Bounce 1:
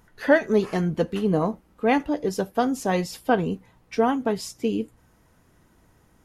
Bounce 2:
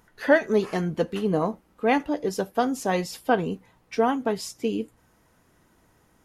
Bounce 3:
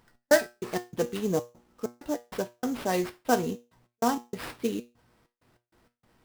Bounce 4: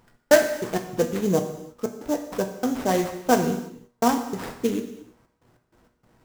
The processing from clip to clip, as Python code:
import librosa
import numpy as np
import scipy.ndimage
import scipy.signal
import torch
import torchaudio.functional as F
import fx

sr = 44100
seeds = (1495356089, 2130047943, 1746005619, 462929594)

y1 = fx.low_shelf(x, sr, hz=180.0, db=-6.5)
y2 = fx.step_gate(y1, sr, bpm=97, pattern='x.x.x.xxx.x', floor_db=-60.0, edge_ms=4.5)
y2 = fx.comb_fb(y2, sr, f0_hz=120.0, decay_s=0.27, harmonics='all', damping=0.0, mix_pct=70)
y2 = fx.sample_hold(y2, sr, seeds[0], rate_hz=6700.0, jitter_pct=20)
y2 = y2 * 10.0 ** (4.0 / 20.0)
y3 = scipy.ndimage.median_filter(y2, 15, mode='constant')
y3 = fx.rev_gated(y3, sr, seeds[1], gate_ms=360, shape='falling', drr_db=6.5)
y3 = y3 * 10.0 ** (5.0 / 20.0)